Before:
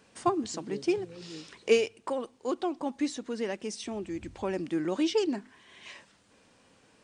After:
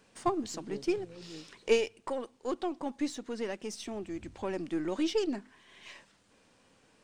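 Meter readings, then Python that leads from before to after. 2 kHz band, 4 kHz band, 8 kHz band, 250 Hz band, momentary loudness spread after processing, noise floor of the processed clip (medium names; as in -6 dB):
-3.0 dB, -3.0 dB, -3.0 dB, -3.0 dB, 17 LU, -66 dBFS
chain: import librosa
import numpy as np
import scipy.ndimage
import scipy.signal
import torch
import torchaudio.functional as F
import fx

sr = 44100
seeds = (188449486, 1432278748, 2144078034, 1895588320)

y = np.where(x < 0.0, 10.0 ** (-3.0 / 20.0) * x, x)
y = y * 10.0 ** (-1.5 / 20.0)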